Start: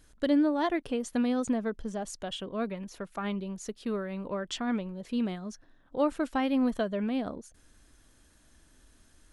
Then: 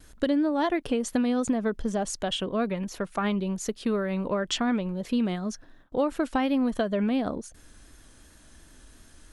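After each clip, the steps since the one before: gate with hold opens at -53 dBFS; compression 5:1, threshold -30 dBFS, peak gain reduction 9 dB; vibrato 2.8 Hz 31 cents; trim +8 dB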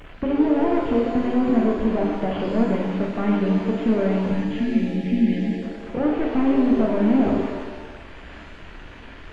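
one-bit delta coder 16 kbps, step -41 dBFS; time-frequency box 4.27–5.63 s, 310–1600 Hz -25 dB; pitch-shifted reverb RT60 1.3 s, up +7 st, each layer -8 dB, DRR -0.5 dB; trim +4 dB

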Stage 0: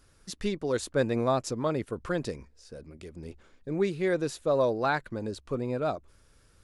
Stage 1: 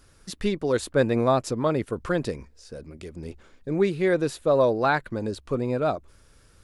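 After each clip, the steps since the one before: dynamic bell 6.2 kHz, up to -5 dB, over -53 dBFS, Q 1.5; trim +5 dB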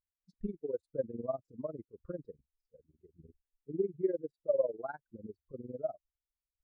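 compression 2:1, threshold -33 dBFS, peak gain reduction 10 dB; tremolo 20 Hz, depth 90%; spectral contrast expander 2.5:1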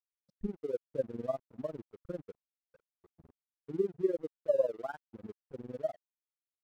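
crossover distortion -58 dBFS; trim +1.5 dB

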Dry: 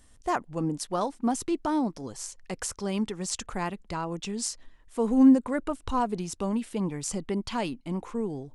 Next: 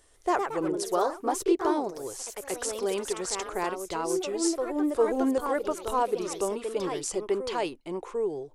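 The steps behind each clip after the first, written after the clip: ever faster or slower copies 142 ms, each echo +2 st, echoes 3, each echo -6 dB; resonant low shelf 300 Hz -8 dB, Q 3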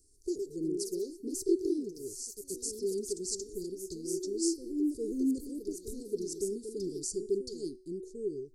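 Chebyshev band-stop 410–4500 Hz, order 5; de-hum 373.9 Hz, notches 31; trim -2.5 dB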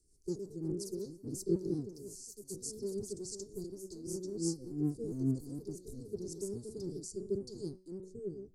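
octave divider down 1 oct, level -1 dB; rotary cabinet horn 5.5 Hz, later 0.85 Hz, at 4.69 s; trim -4 dB

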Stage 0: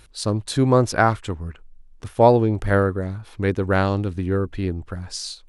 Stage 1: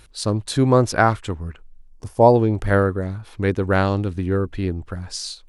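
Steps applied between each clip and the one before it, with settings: time-frequency box 1.89–2.35 s, 1.1–4.4 kHz -10 dB; trim +1 dB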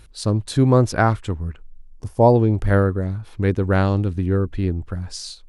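bass shelf 290 Hz +7 dB; trim -3 dB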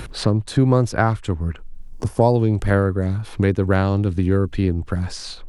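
three bands compressed up and down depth 70%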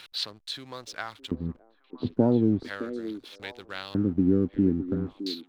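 LFO band-pass square 0.38 Hz 260–3700 Hz; hysteresis with a dead band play -48 dBFS; repeats whose band climbs or falls 614 ms, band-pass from 370 Hz, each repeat 1.4 oct, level -9 dB; trim +2 dB

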